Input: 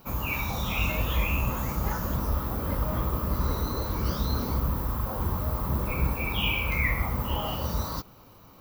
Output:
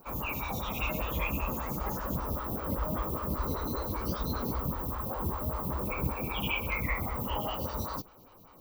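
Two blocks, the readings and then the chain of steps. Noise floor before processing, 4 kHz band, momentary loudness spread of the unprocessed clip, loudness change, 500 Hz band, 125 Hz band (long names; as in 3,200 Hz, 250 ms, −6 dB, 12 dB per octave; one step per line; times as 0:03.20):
−52 dBFS, −6.5 dB, 4 LU, −4.5 dB, −1.5 dB, −7.0 dB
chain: phaser with staggered stages 5.1 Hz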